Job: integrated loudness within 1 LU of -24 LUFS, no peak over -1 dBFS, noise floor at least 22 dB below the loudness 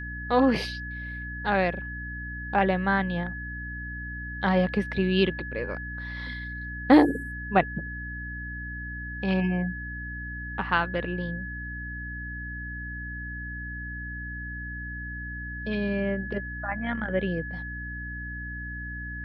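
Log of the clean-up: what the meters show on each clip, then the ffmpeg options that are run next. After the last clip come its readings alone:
hum 60 Hz; highest harmonic 300 Hz; hum level -35 dBFS; steady tone 1.7 kHz; tone level -36 dBFS; loudness -29.0 LUFS; peak level -5.5 dBFS; loudness target -24.0 LUFS
-> -af "bandreject=f=60:t=h:w=6,bandreject=f=120:t=h:w=6,bandreject=f=180:t=h:w=6,bandreject=f=240:t=h:w=6,bandreject=f=300:t=h:w=6"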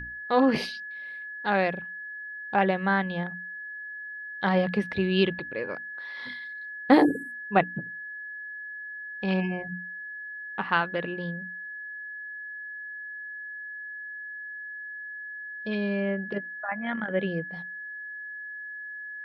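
hum not found; steady tone 1.7 kHz; tone level -36 dBFS
-> -af "bandreject=f=1700:w=30"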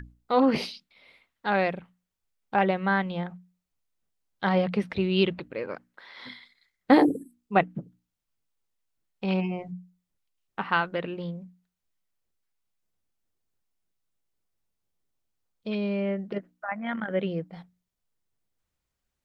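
steady tone not found; loudness -27.5 LUFS; peak level -5.5 dBFS; loudness target -24.0 LUFS
-> -af "volume=1.5"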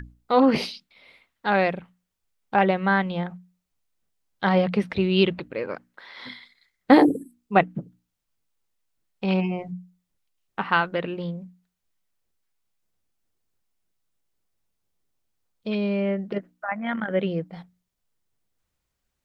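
loudness -24.0 LUFS; peak level -2.0 dBFS; noise floor -80 dBFS

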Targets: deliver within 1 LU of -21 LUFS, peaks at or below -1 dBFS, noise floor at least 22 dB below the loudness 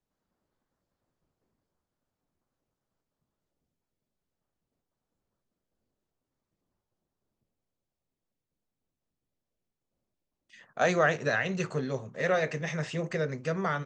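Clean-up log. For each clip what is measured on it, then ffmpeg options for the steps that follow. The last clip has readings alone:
loudness -29.5 LUFS; peak level -12.0 dBFS; loudness target -21.0 LUFS
-> -af "volume=2.66"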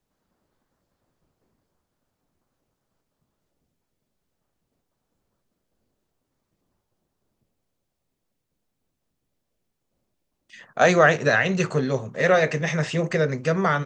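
loudness -21.0 LUFS; peak level -3.5 dBFS; noise floor -79 dBFS

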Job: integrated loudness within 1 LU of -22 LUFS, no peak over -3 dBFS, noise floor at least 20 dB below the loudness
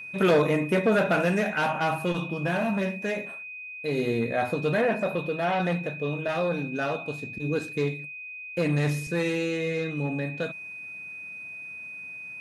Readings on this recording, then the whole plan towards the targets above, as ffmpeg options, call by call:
steady tone 2.5 kHz; tone level -37 dBFS; loudness -27.5 LUFS; peak level -11.0 dBFS; loudness target -22.0 LUFS
-> -af "bandreject=f=2500:w=30"
-af "volume=1.88"

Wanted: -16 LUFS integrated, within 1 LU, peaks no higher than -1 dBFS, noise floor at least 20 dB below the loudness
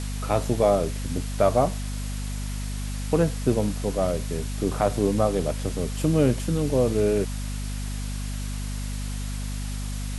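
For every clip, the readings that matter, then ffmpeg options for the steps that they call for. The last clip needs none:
hum 50 Hz; highest harmonic 250 Hz; hum level -28 dBFS; noise floor -30 dBFS; noise floor target -46 dBFS; loudness -26.0 LUFS; peak level -7.0 dBFS; loudness target -16.0 LUFS
-> -af "bandreject=f=50:t=h:w=4,bandreject=f=100:t=h:w=4,bandreject=f=150:t=h:w=4,bandreject=f=200:t=h:w=4,bandreject=f=250:t=h:w=4"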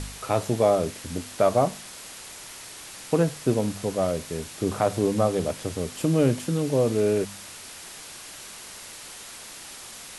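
hum not found; noise floor -42 dBFS; noise floor target -45 dBFS
-> -af "afftdn=nr=6:nf=-42"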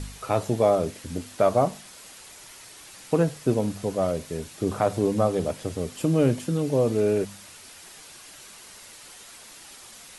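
noise floor -47 dBFS; loudness -25.0 LUFS; peak level -8.5 dBFS; loudness target -16.0 LUFS
-> -af "volume=2.82,alimiter=limit=0.891:level=0:latency=1"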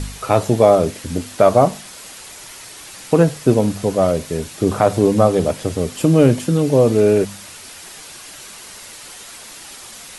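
loudness -16.5 LUFS; peak level -1.0 dBFS; noise floor -38 dBFS

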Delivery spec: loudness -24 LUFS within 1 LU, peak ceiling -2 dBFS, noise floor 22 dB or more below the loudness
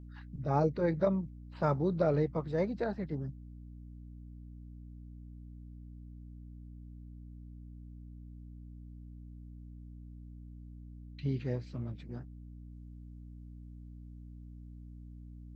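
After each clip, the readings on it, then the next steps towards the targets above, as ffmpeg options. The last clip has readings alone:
hum 60 Hz; highest harmonic 300 Hz; hum level -46 dBFS; loudness -33.5 LUFS; peak level -16.0 dBFS; loudness target -24.0 LUFS
-> -af "bandreject=f=60:t=h:w=4,bandreject=f=120:t=h:w=4,bandreject=f=180:t=h:w=4,bandreject=f=240:t=h:w=4,bandreject=f=300:t=h:w=4"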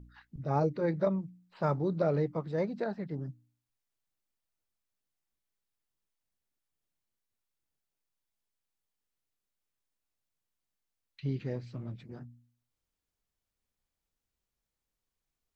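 hum not found; loudness -33.5 LUFS; peak level -16.0 dBFS; loudness target -24.0 LUFS
-> -af "volume=2.99"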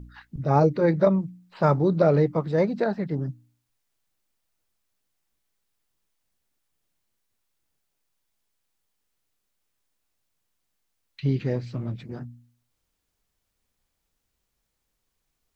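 loudness -24.0 LUFS; peak level -6.5 dBFS; noise floor -78 dBFS

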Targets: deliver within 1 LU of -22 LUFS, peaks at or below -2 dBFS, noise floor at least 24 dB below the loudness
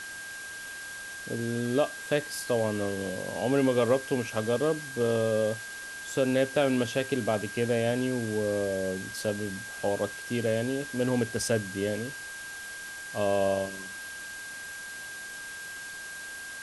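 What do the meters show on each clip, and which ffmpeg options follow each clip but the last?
steady tone 1.6 kHz; tone level -39 dBFS; noise floor -41 dBFS; noise floor target -54 dBFS; loudness -30.0 LUFS; peak level -13.0 dBFS; loudness target -22.0 LUFS
-> -af "bandreject=f=1600:w=30"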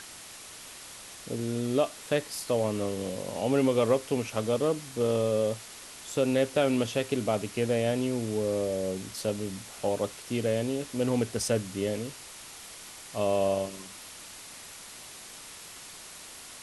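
steady tone not found; noise floor -46 dBFS; noise floor target -54 dBFS
-> -af "afftdn=nr=8:nf=-46"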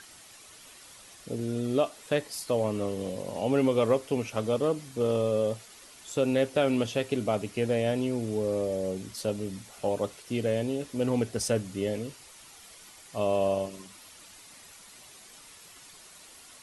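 noise floor -52 dBFS; noise floor target -54 dBFS
-> -af "afftdn=nr=6:nf=-52"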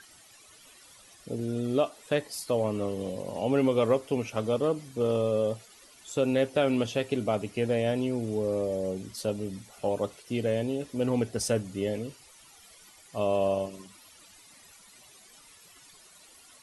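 noise floor -55 dBFS; loudness -29.5 LUFS; peak level -12.5 dBFS; loudness target -22.0 LUFS
-> -af "volume=2.37"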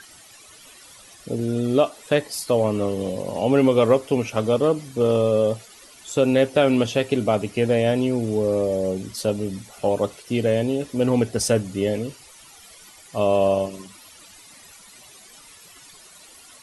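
loudness -22.0 LUFS; peak level -5.0 dBFS; noise floor -48 dBFS

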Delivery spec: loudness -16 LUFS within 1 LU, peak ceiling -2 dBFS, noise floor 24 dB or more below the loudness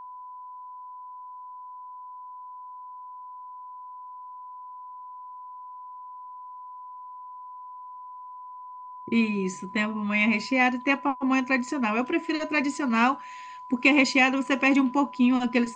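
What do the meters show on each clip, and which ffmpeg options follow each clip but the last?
steady tone 1 kHz; tone level -39 dBFS; loudness -24.0 LUFS; peak level -5.5 dBFS; loudness target -16.0 LUFS
-> -af "bandreject=f=1000:w=30"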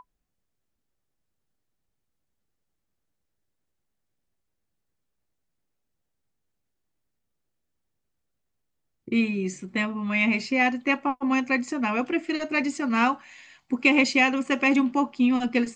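steady tone not found; loudness -24.0 LUFS; peak level -5.5 dBFS; loudness target -16.0 LUFS
-> -af "volume=2.51,alimiter=limit=0.794:level=0:latency=1"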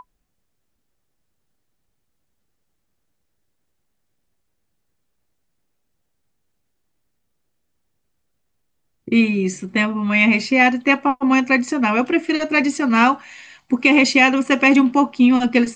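loudness -16.5 LUFS; peak level -2.0 dBFS; noise floor -71 dBFS

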